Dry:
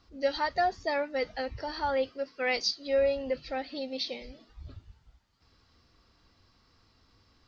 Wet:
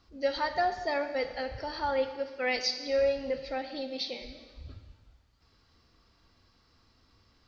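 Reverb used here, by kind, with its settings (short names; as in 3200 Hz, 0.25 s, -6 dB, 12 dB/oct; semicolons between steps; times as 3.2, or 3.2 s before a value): Schroeder reverb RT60 1.5 s, combs from 28 ms, DRR 8.5 dB; gain -1 dB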